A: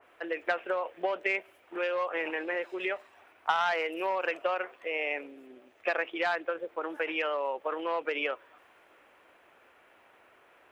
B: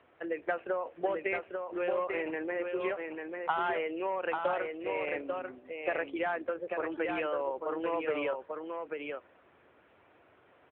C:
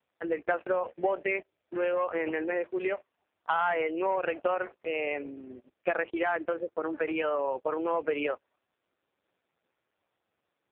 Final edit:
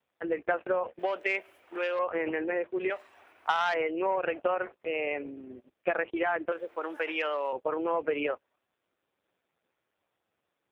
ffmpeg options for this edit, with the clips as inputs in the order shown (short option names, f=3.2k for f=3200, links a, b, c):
-filter_complex "[0:a]asplit=3[a][b][c];[2:a]asplit=4[d][e][f][g];[d]atrim=end=0.992[h];[a]atrim=start=0.988:end=1.992[i];[e]atrim=start=1.988:end=2.902[j];[b]atrim=start=2.898:end=3.742[k];[f]atrim=start=3.738:end=6.522[l];[c]atrim=start=6.518:end=7.532[m];[g]atrim=start=7.528[n];[h][i]acrossfade=d=0.004:c1=hsin:c2=hsin[o];[o][j]acrossfade=d=0.004:c1=hsin:c2=hsin[p];[p][k]acrossfade=d=0.004:c1=hsin:c2=hsin[q];[q][l]acrossfade=d=0.004:c1=hsin:c2=hsin[r];[r][m]acrossfade=d=0.004:c1=hsin:c2=hsin[s];[s][n]acrossfade=d=0.004:c1=hsin:c2=hsin"